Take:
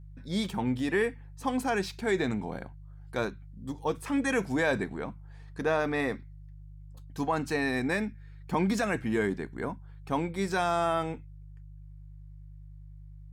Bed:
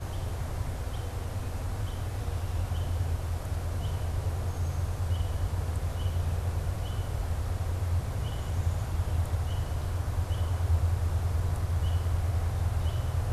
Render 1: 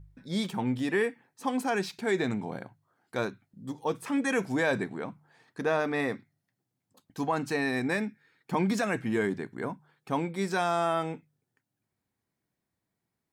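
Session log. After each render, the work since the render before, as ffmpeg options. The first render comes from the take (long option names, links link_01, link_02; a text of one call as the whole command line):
ffmpeg -i in.wav -af "bandreject=frequency=50:width_type=h:width=4,bandreject=frequency=100:width_type=h:width=4,bandreject=frequency=150:width_type=h:width=4" out.wav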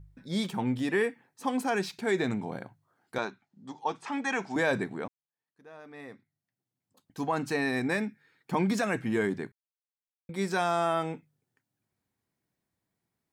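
ffmpeg -i in.wav -filter_complex "[0:a]asettb=1/sr,asplit=3[link_01][link_02][link_03];[link_01]atrim=end=3.184[link_04];[link_02]atrim=start=3.18:end=4.56,asetpts=PTS-STARTPTS,afade=type=in:duration=0.004:curve=qsin,afade=type=out:start_time=1.376:duration=0.004:curve=qsin,highpass=250,equalizer=frequency=300:width_type=q:width=4:gain=-5,equalizer=frequency=500:width_type=q:width=4:gain=-9,equalizer=frequency=830:width_type=q:width=4:gain=7,lowpass=frequency=6900:width=0.5412,lowpass=frequency=6900:width=1.3066[link_05];[link_03]atrim=start=4.556[link_06];[link_04][link_05]acrossfade=duration=0.004:curve1=hsin:curve2=qsin[link_07];[link_07][link_06]acrossfade=duration=0.004:curve1=qsin:curve2=hsin,asplit=4[link_08][link_09][link_10][link_11];[link_08]atrim=end=5.08,asetpts=PTS-STARTPTS,afade=type=out:start_time=5.076:duration=0.004:curve=hsin[link_12];[link_09]atrim=start=5.08:end=9.52,asetpts=PTS-STARTPTS,afade=type=in:duration=2.33:curve=qua,afade=type=out:start_time=4.436:duration=0.004:curve=hsin[link_13];[link_10]atrim=start=9.52:end=10.29,asetpts=PTS-STARTPTS,volume=0[link_14];[link_11]atrim=start=10.29,asetpts=PTS-STARTPTS,afade=type=in:duration=0.004:curve=hsin[link_15];[link_12][link_13][link_14][link_15]concat=n=4:v=0:a=1" out.wav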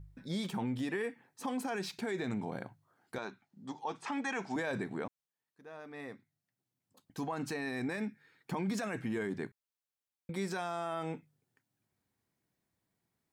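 ffmpeg -i in.wav -af "acompressor=threshold=-35dB:ratio=1.5,alimiter=level_in=3.5dB:limit=-24dB:level=0:latency=1:release=42,volume=-3.5dB" out.wav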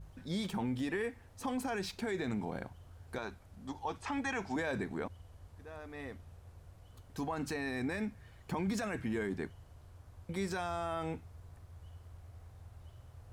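ffmpeg -i in.wav -i bed.wav -filter_complex "[1:a]volume=-24dB[link_01];[0:a][link_01]amix=inputs=2:normalize=0" out.wav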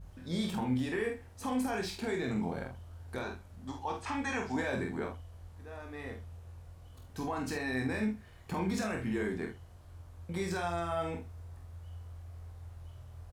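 ffmpeg -i in.wav -filter_complex "[0:a]asplit=2[link_01][link_02];[link_02]adelay=47,volume=-5dB[link_03];[link_01][link_03]amix=inputs=2:normalize=0,asplit=2[link_04][link_05];[link_05]aecho=0:1:23|79:0.501|0.158[link_06];[link_04][link_06]amix=inputs=2:normalize=0" out.wav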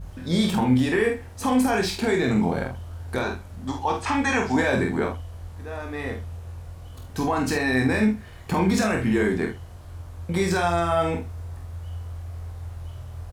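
ffmpeg -i in.wav -af "volume=12dB" out.wav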